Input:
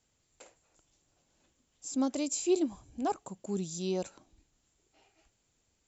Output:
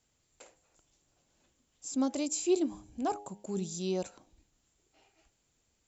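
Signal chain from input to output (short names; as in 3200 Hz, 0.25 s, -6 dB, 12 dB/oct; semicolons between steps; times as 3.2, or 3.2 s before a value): de-hum 103 Hz, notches 9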